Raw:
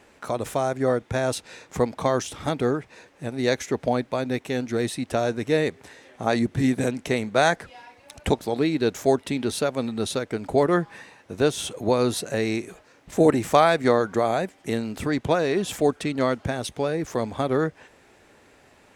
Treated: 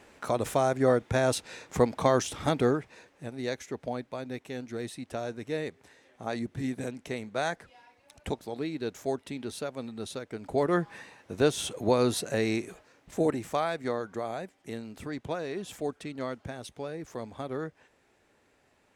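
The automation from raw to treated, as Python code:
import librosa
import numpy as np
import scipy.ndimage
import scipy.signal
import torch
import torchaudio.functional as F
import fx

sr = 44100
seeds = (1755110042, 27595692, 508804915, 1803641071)

y = fx.gain(x, sr, db=fx.line((2.61, -1.0), (3.55, -11.0), (10.27, -11.0), (10.9, -3.0), (12.68, -3.0), (13.55, -12.0)))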